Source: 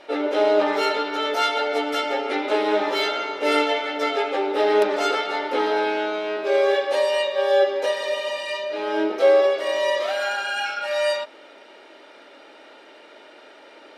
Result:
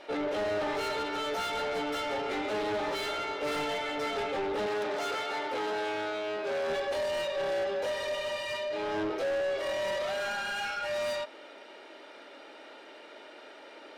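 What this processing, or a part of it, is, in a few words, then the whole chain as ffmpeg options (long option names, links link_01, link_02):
saturation between pre-emphasis and de-emphasis: -filter_complex "[0:a]highshelf=frequency=3200:gain=11,asoftclip=type=tanh:threshold=-25.5dB,highshelf=frequency=3200:gain=-11,asettb=1/sr,asplit=3[link_01][link_02][link_03];[link_01]atrim=end=4.664[link_04];[link_02]atrim=start=4.66:end=6.7,asetpts=PTS-STARTPTS,afade=type=in:duration=0.004:curve=qsin,afade=type=out:start_time=2.036:duration=0.004:curve=qsin,highpass=frequency=260:poles=1[link_05];[link_03]atrim=start=6.696[link_06];[link_04][link_05]acrossfade=duration=0.004:curve1=hsin:curve2=qsin[link_07];[link_07][link_06]acrossfade=duration=0.004:curve1=qsin:curve2=hsin,volume=-2.5dB"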